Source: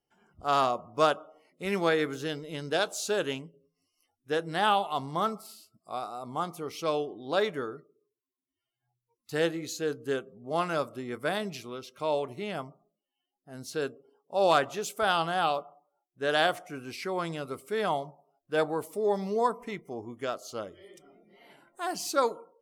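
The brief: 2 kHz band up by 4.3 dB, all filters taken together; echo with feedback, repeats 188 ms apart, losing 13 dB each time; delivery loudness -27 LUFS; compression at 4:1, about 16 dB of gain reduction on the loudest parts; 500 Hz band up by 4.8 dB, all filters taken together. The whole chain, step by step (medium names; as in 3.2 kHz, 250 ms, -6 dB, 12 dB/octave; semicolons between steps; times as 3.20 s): peaking EQ 500 Hz +5.5 dB; peaking EQ 2 kHz +5.5 dB; compression 4:1, threshold -35 dBFS; feedback delay 188 ms, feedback 22%, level -13 dB; trim +11 dB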